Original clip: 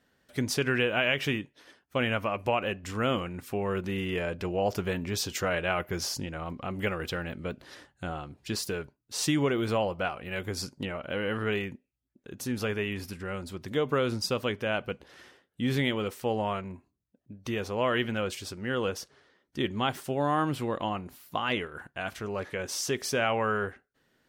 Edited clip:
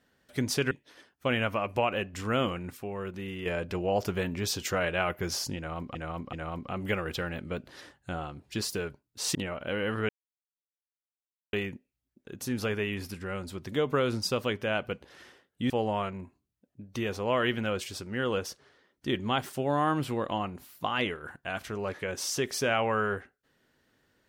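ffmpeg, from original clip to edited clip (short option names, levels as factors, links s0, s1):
-filter_complex "[0:a]asplit=9[s0][s1][s2][s3][s4][s5][s6][s7][s8];[s0]atrim=end=0.712[s9];[s1]atrim=start=1.408:end=3.472[s10];[s2]atrim=start=3.468:end=4.162,asetpts=PTS-STARTPTS,volume=0.501[s11];[s3]atrim=start=4.158:end=6.652[s12];[s4]atrim=start=6.268:end=6.652[s13];[s5]atrim=start=6.268:end=9.292[s14];[s6]atrim=start=10.778:end=11.52,asetpts=PTS-STARTPTS,afade=t=out:st=0.738:d=0.004:c=hsin,apad=pad_dur=1.44[s15];[s7]atrim=start=11.52:end=15.692,asetpts=PTS-STARTPTS,afade=t=in:d=0.004:c=hsin[s16];[s8]atrim=start=16.208[s17];[s9][s10]acrossfade=d=0.004:c1=hsin:c2=hsin[s18];[s18][s11]acrossfade=d=0.004:c1=hsin:c2=hsin[s19];[s19][s12]acrossfade=d=0.004:c1=hsin:c2=hsin[s20];[s20][s13]acrossfade=d=0.004:c1=hsin:c2=hsin[s21];[s21][s14]acrossfade=d=0.004:c1=hsin:c2=hsin[s22];[s15][s16]concat=n=2:v=0:a=1[s23];[s22][s23]acrossfade=d=0.004:c1=hsin:c2=hsin[s24];[s24][s17]acrossfade=d=0.004:c1=hsin:c2=hsin"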